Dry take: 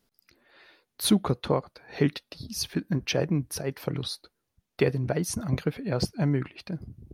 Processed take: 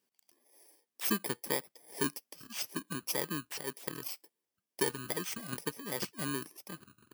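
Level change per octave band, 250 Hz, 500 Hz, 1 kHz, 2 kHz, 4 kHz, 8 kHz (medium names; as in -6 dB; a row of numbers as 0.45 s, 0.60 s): -12.0 dB, -10.5 dB, -5.5 dB, -3.0 dB, -7.0 dB, -3.0 dB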